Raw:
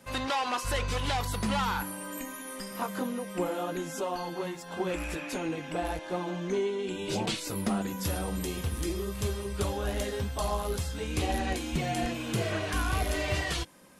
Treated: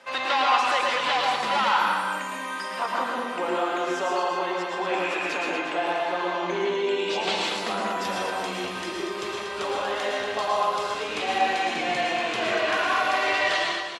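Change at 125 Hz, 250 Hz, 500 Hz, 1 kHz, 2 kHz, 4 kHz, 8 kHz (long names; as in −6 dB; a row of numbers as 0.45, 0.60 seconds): −13.0, −1.0, +6.0, +11.0, +11.0, +8.5, −1.5 decibels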